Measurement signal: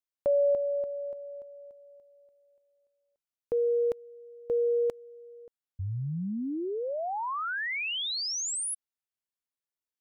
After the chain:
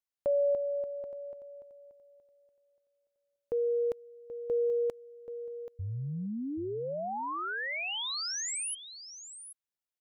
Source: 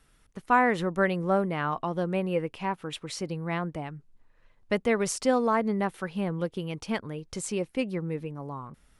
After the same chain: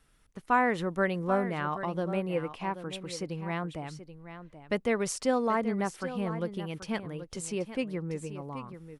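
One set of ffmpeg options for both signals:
-af "aecho=1:1:781:0.251,volume=-3dB"

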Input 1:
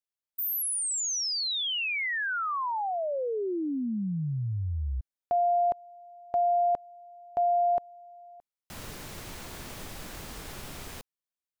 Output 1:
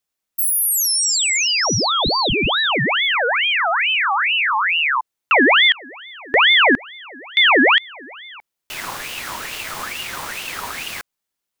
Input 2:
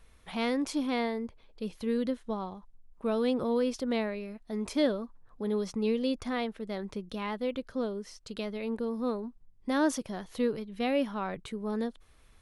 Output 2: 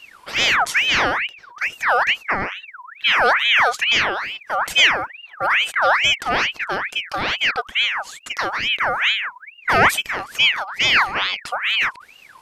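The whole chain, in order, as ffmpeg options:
-af "acontrast=83,aeval=exprs='val(0)*sin(2*PI*1900*n/s+1900*0.5/2.3*sin(2*PI*2.3*n/s))':c=same,volume=8dB"

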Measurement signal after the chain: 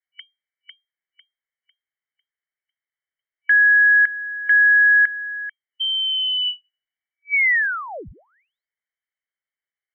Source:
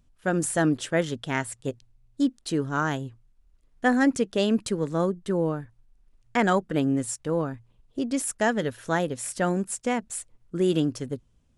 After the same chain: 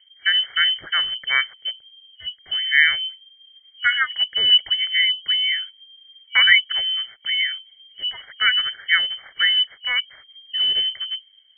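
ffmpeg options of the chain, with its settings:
-af "afftfilt=real='re*(1-between(b*sr/4096,240,910))':imag='im*(1-between(b*sr/4096,240,910))':win_size=4096:overlap=0.75,lowpass=f=2.7k:t=q:w=0.5098,lowpass=f=2.7k:t=q:w=0.6013,lowpass=f=2.7k:t=q:w=0.9,lowpass=f=2.7k:t=q:w=2.563,afreqshift=-3200,equalizer=f=250:t=o:w=1:g=-9,equalizer=f=1k:t=o:w=1:g=-10,equalizer=f=2k:t=o:w=1:g=11,volume=5.5dB"

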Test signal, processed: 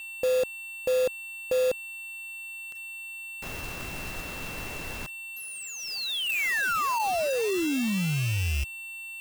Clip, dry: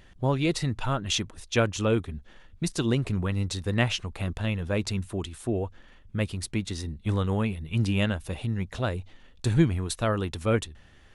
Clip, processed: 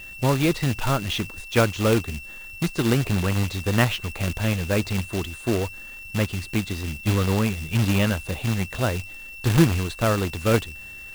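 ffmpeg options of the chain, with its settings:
-filter_complex "[0:a]aeval=exprs='val(0)+0.00794*sin(2*PI*2700*n/s)':c=same,acrossover=split=3500[a][b];[b]acompressor=threshold=-47dB:ratio=4:attack=1:release=60[c];[a][c]amix=inputs=2:normalize=0,acrusher=bits=2:mode=log:mix=0:aa=0.000001,volume=4dB"

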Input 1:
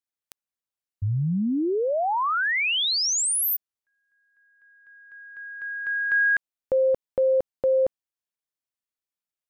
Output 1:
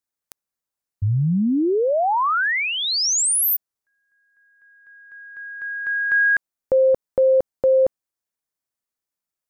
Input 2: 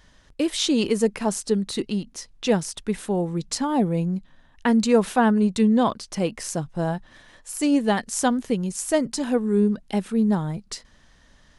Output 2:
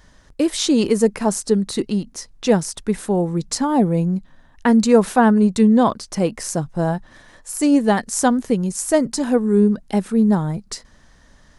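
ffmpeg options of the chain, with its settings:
-af "equalizer=f=3k:w=1.4:g=-6,volume=5dB"

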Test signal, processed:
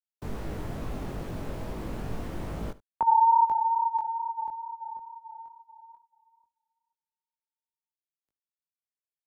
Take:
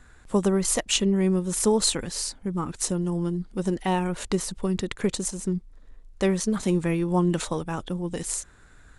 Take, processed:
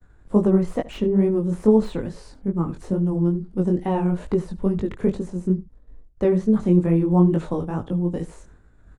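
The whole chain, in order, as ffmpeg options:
-filter_complex "[0:a]flanger=delay=18:depth=5.3:speed=2.3,agate=range=-33dB:threshold=-49dB:ratio=3:detection=peak,tiltshelf=f=1.2k:g=9,acrossover=split=120|1900[a][b][c];[c]aeval=exprs='0.0299*(abs(mod(val(0)/0.0299+3,4)-2)-1)':c=same[d];[a][b][d]amix=inputs=3:normalize=0,acrossover=split=3300[e][f];[f]acompressor=threshold=-53dB:ratio=4:attack=1:release=60[g];[e][g]amix=inputs=2:normalize=0,asplit=2[h][i];[i]aecho=0:1:73:0.112[j];[h][j]amix=inputs=2:normalize=0"

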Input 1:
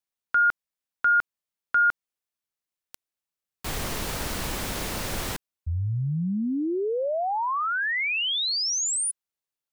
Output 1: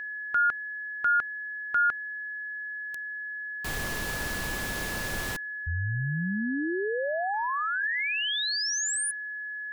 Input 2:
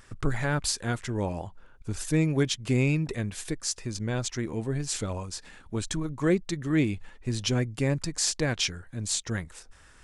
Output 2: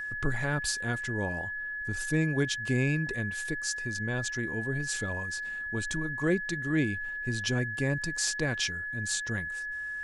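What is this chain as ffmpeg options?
-af "aeval=exprs='val(0)+0.0316*sin(2*PI*1700*n/s)':c=same,volume=-3.5dB"

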